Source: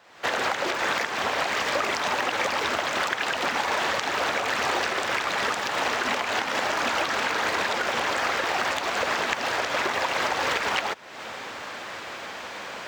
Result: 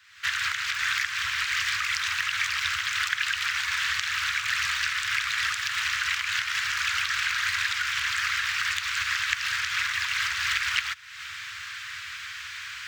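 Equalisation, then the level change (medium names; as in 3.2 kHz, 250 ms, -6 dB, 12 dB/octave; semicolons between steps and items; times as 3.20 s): inverse Chebyshev band-stop 210–720 Hz, stop band 50 dB; +2.0 dB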